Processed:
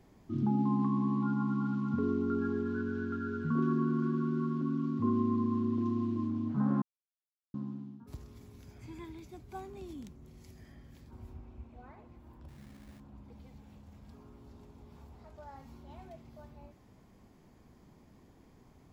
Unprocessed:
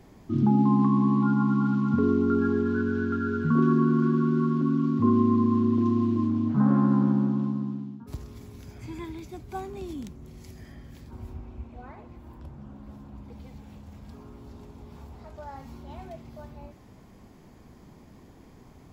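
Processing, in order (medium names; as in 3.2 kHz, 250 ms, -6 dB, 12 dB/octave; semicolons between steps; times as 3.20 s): 6.82–7.54 s: mute; 12.48–13.00 s: sample-rate reducer 2 kHz, jitter 20%; trim -8.5 dB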